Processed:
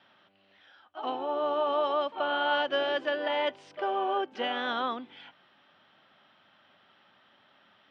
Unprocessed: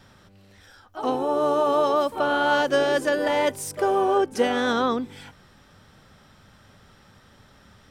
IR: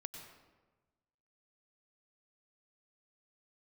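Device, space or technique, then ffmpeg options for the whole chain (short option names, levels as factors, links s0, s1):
phone earpiece: -af "highpass=350,equalizer=f=460:t=q:w=4:g=-9,equalizer=f=660:t=q:w=4:g=3,equalizer=f=3000:t=q:w=4:g=7,lowpass=f=3700:w=0.5412,lowpass=f=3700:w=1.3066,volume=0.501"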